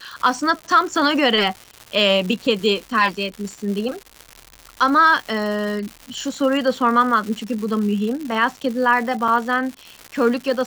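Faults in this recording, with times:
surface crackle 260 per second −27 dBFS
0:09.28: drop-out 4.5 ms

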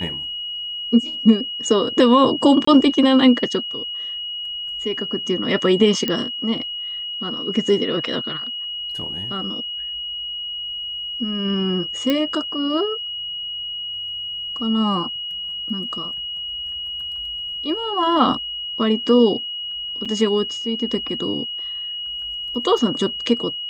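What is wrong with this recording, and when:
whistle 2,900 Hz −26 dBFS
0:02.65–0:02.67: drop-out 24 ms
0:06.08: click −8 dBFS
0:12.10: click −7 dBFS
0:20.05–0:20.06: drop-out 6 ms

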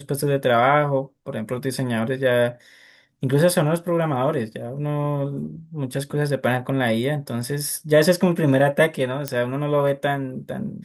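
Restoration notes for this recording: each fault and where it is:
0:09.28: click −8 dBFS

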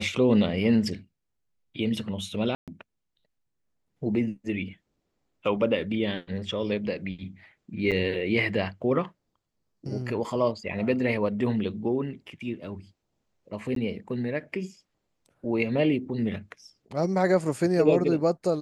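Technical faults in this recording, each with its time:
0:02.55–0:02.68: drop-out 127 ms
0:07.91–0:07.92: drop-out 7.2 ms
0:13.75–0:13.76: drop-out 13 ms

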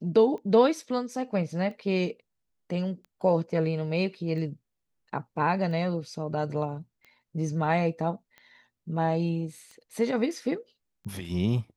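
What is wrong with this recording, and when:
scratch tick 45 rpm −33 dBFS

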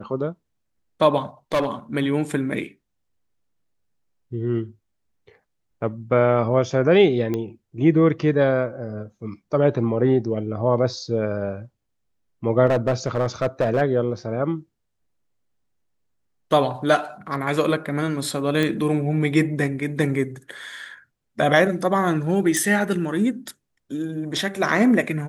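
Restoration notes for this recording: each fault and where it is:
0:01.53–0:01.67: clipping −16 dBFS
0:07.34: click −14 dBFS
0:12.66–0:13.82: clipping −15 dBFS
0:18.63: click −10 dBFS
0:22.57: click

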